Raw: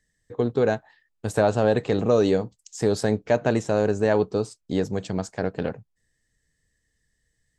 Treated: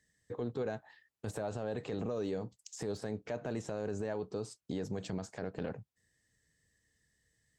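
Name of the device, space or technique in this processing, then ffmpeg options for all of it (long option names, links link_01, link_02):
podcast mastering chain: -af "highpass=67,deesser=0.95,acompressor=threshold=-29dB:ratio=3,alimiter=level_in=2dB:limit=-24dB:level=0:latency=1:release=31,volume=-2dB,volume=-1dB" -ar 48000 -c:a libmp3lame -b:a 96k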